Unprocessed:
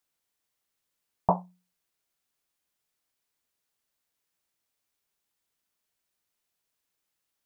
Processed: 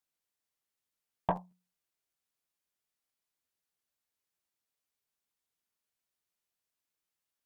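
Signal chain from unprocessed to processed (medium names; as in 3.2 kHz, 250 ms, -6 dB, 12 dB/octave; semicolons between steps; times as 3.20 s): Chebyshev shaper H 4 -20 dB, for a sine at -8.5 dBFS; crackling interface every 0.15 s, samples 512, repeat, from 0.75 s; trim -7 dB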